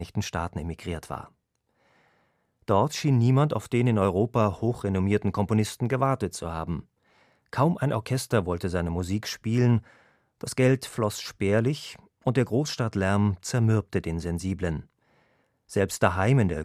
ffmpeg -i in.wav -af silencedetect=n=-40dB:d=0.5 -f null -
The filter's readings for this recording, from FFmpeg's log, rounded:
silence_start: 1.27
silence_end: 2.68 | silence_duration: 1.41
silence_start: 6.81
silence_end: 7.53 | silence_duration: 0.72
silence_start: 9.79
silence_end: 10.41 | silence_duration: 0.62
silence_start: 14.81
silence_end: 15.71 | silence_duration: 0.90